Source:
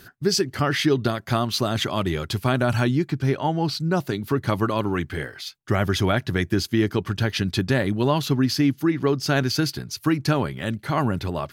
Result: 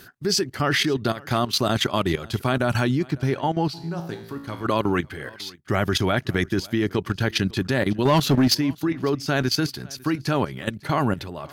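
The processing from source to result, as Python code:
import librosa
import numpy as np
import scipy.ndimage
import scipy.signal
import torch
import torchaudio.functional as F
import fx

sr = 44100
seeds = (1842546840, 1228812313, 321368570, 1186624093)

y = fx.low_shelf(x, sr, hz=120.0, db=-6.0)
y = fx.level_steps(y, sr, step_db=13)
y = fx.comb_fb(y, sr, f0_hz=56.0, decay_s=0.88, harmonics='all', damping=0.0, mix_pct=80, at=(3.73, 4.64), fade=0.02)
y = fx.leveller(y, sr, passes=2, at=(8.05, 8.55))
y = y + 10.0 ** (-24.0 / 20.0) * np.pad(y, (int(550 * sr / 1000.0), 0))[:len(y)]
y = F.gain(torch.from_numpy(y), 5.0).numpy()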